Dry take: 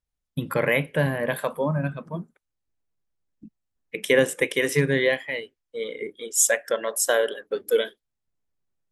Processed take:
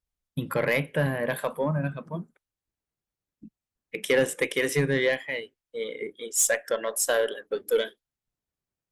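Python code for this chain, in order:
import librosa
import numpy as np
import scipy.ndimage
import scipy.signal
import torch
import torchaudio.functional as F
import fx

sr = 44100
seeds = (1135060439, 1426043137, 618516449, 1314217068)

y = fx.cheby_harmonics(x, sr, harmonics=(3, 8), levels_db=(-25, -44), full_scale_db=-4.0)
y = 10.0 ** (-13.5 / 20.0) * np.tanh(y / 10.0 ** (-13.5 / 20.0))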